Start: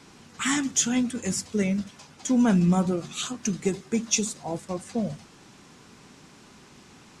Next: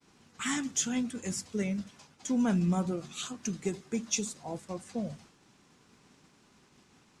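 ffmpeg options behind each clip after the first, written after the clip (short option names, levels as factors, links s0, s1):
-af "agate=range=0.0224:threshold=0.00501:ratio=3:detection=peak,volume=0.447"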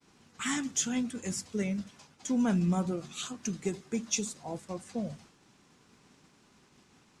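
-af anull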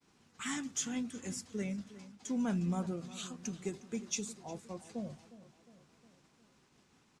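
-filter_complex "[0:a]asplit=2[s0][s1];[s1]adelay=358,lowpass=f=3600:p=1,volume=0.158,asplit=2[s2][s3];[s3]adelay=358,lowpass=f=3600:p=1,volume=0.55,asplit=2[s4][s5];[s5]adelay=358,lowpass=f=3600:p=1,volume=0.55,asplit=2[s6][s7];[s7]adelay=358,lowpass=f=3600:p=1,volume=0.55,asplit=2[s8][s9];[s9]adelay=358,lowpass=f=3600:p=1,volume=0.55[s10];[s0][s2][s4][s6][s8][s10]amix=inputs=6:normalize=0,volume=0.501"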